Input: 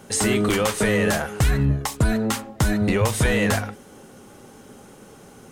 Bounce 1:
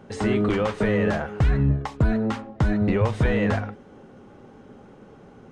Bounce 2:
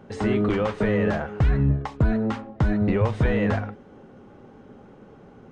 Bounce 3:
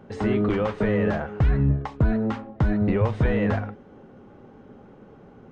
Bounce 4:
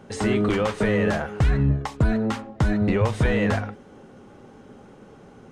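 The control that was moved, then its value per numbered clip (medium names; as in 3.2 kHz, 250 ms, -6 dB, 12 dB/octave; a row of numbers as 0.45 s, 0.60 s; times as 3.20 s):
tape spacing loss, at 10 kHz: 29 dB, 37 dB, 45 dB, 21 dB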